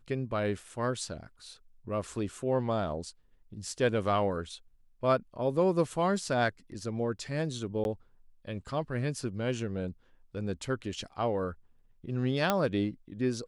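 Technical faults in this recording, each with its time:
0:07.84–0:07.85: drop-out 11 ms
0:12.50: click −11 dBFS

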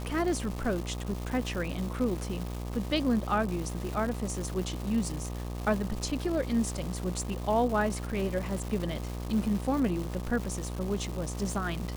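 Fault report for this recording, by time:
mains buzz 60 Hz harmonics 21 −36 dBFS
surface crackle 490 per second −35 dBFS

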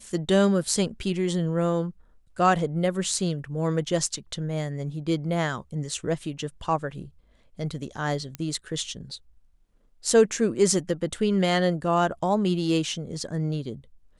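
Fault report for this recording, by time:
0:08.35: click −17 dBFS

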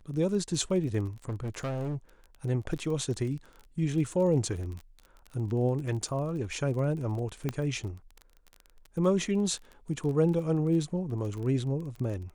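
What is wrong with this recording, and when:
surface crackle 26 per second −36 dBFS
0:01.28–0:01.96: clipping −29.5 dBFS
0:07.49: click −17 dBFS

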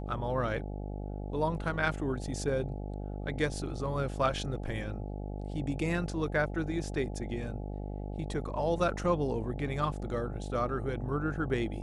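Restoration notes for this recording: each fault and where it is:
mains buzz 50 Hz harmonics 17 −38 dBFS

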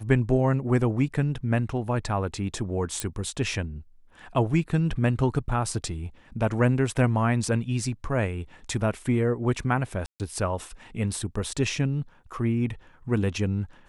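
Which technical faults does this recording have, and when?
0:03.00: click −12 dBFS
0:10.06–0:10.20: drop-out 138 ms

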